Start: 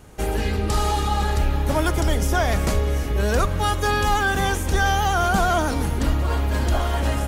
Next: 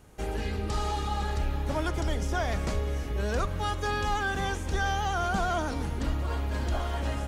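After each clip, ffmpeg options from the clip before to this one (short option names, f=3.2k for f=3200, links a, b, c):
-filter_complex "[0:a]acrossover=split=8100[a][b];[b]acompressor=threshold=-52dB:ratio=4:attack=1:release=60[c];[a][c]amix=inputs=2:normalize=0,volume=-8.5dB"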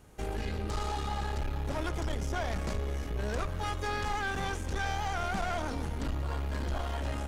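-af "aeval=exprs='(tanh(25.1*val(0)+0.45)-tanh(0.45))/25.1':c=same"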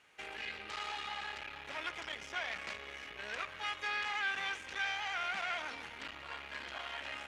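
-af "bandpass=f=2.4k:t=q:w=1.9:csg=0,volume=6dB"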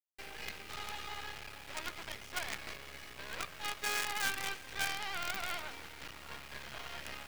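-af "acrusher=bits=6:dc=4:mix=0:aa=0.000001,volume=1.5dB"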